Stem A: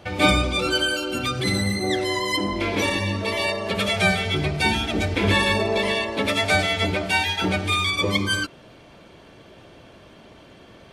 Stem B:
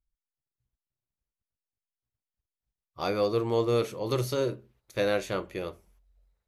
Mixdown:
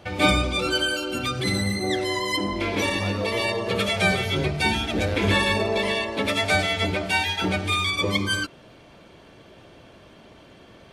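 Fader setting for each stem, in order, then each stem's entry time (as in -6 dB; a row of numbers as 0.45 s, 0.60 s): -1.5 dB, -4.5 dB; 0.00 s, 0.00 s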